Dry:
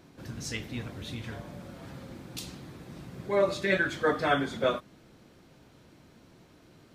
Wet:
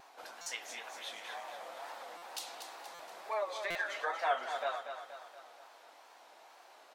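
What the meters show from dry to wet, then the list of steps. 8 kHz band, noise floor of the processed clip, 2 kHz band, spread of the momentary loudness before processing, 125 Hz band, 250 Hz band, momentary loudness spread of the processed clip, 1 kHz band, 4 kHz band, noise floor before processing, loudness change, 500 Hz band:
-2.0 dB, -59 dBFS, -7.0 dB, 18 LU, under -30 dB, -26.0 dB, 23 LU, -2.5 dB, -4.5 dB, -58 dBFS, -9.0 dB, -10.5 dB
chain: compressor 2.5:1, threshold -39 dBFS, peak gain reduction 13 dB; ladder high-pass 670 Hz, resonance 55%; wow and flutter 140 cents; on a send: feedback echo 0.237 s, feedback 51%, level -8 dB; on the sum: stuck buffer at 0.41/2.17/2.94/3.7, samples 256, times 8; gain +11 dB

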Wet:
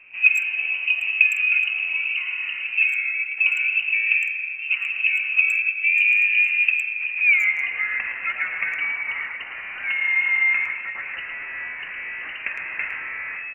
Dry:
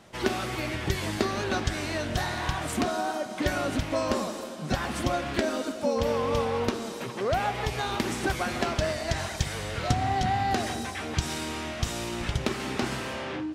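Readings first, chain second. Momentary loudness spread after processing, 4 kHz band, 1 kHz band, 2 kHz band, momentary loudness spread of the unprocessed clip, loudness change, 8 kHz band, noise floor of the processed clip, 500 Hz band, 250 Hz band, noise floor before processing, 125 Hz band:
14 LU, -1.5 dB, -12.5 dB, +16.5 dB, 5 LU, +9.0 dB, under -10 dB, -34 dBFS, under -20 dB, under -25 dB, -37 dBFS, under -30 dB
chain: tilt shelf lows +6.5 dB, about 1200 Hz; added noise blue -36 dBFS; band-pass sweep 380 Hz -> 990 Hz, 6.92–7.89; inverted band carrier 2900 Hz; speakerphone echo 0.11 s, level -7 dB; gain +8 dB

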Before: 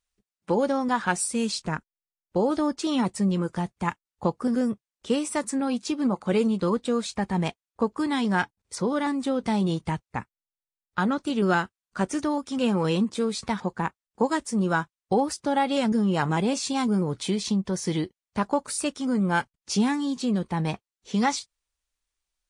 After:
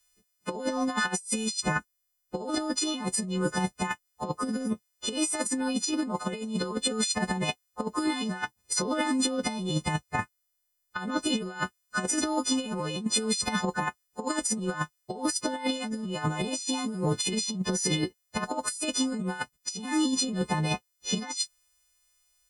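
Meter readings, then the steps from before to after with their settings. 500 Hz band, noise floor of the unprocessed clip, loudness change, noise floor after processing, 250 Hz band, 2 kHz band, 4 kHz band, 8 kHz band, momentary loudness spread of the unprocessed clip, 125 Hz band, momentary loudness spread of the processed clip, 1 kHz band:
-6.5 dB, under -85 dBFS, -3.0 dB, -77 dBFS, -5.0 dB, -1.5 dB, +3.5 dB, +5.5 dB, 7 LU, -4.0 dB, 7 LU, -5.0 dB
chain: frequency quantiser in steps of 3 st; negative-ratio compressor -28 dBFS, ratio -0.5

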